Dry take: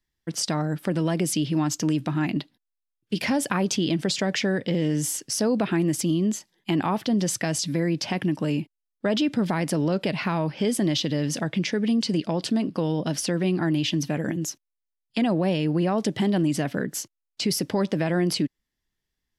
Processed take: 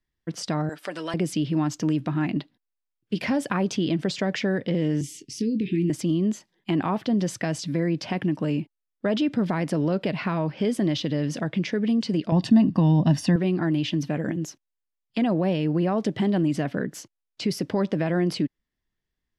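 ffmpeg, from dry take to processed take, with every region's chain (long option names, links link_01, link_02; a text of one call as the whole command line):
ffmpeg -i in.wav -filter_complex "[0:a]asettb=1/sr,asplit=3[link_01][link_02][link_03];[link_01]atrim=end=0.694[link_04];[link_02]atrim=start=0.69:end=1.14,asetpts=PTS-STARTPTS,afade=type=in:duration=0.004:curve=qsin,afade=type=out:start_time=0.446:duration=0.004:curve=qsin,highpass=560,lowpass=7800,aemphasis=mode=production:type=75kf,aecho=1:1:6.8:0.42,atrim=end_sample=19845[link_05];[link_03]atrim=start=1.136[link_06];[link_04][link_05]acrossfade=duration=0.004:curve1=hsin:curve2=qsin[link_07];[link_07][link_06]acrossfade=duration=0.004:curve1=qsin:curve2=hsin,asettb=1/sr,asplit=3[link_08][link_09][link_10];[link_08]atrim=end=5.014[link_11];[link_09]atrim=start=5.01:end=5.9,asetpts=PTS-STARTPTS,afade=type=in:duration=0.004:curve=qsin,afade=type=out:start_time=0.886:duration=0.004:curve=qsin,asuperstop=centerf=940:order=12:qfactor=0.55,highshelf=frequency=9400:gain=-9,asplit=2[link_12][link_13];[link_13]adelay=22,volume=-12dB[link_14];[link_12][link_14]amix=inputs=2:normalize=0,atrim=end_sample=39249[link_15];[link_10]atrim=start=5.896[link_16];[link_11][link_15]acrossfade=duration=0.004:curve1=hsin:curve2=qsin[link_17];[link_17][link_16]acrossfade=duration=0.004:curve1=qsin:curve2=hsin,asettb=1/sr,asplit=3[link_18][link_19][link_20];[link_18]atrim=end=12.324[link_21];[link_19]atrim=start=12.32:end=13.36,asetpts=PTS-STARTPTS,afade=type=in:duration=0.004:curve=qsin,afade=type=out:start_time=1.036:duration=0.004:curve=qsin,lowshelf=frequency=290:gain=9,aecho=1:1:1.1:0.69,atrim=end_sample=45864[link_22];[link_20]atrim=start=13.356[link_23];[link_21][link_22]acrossfade=duration=0.004:curve1=hsin:curve2=qsin[link_24];[link_24][link_23]acrossfade=duration=0.004:curve1=qsin:curve2=hsin,lowpass=frequency=2500:poles=1,bandreject=frequency=850:width=20" out.wav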